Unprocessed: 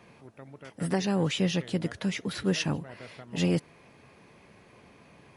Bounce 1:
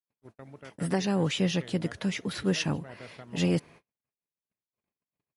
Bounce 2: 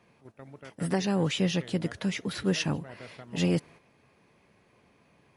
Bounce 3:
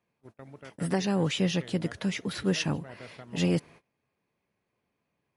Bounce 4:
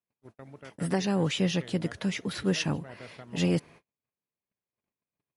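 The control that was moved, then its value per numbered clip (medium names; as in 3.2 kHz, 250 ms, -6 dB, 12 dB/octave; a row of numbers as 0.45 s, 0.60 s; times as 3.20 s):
gate, range: -60 dB, -8 dB, -25 dB, -43 dB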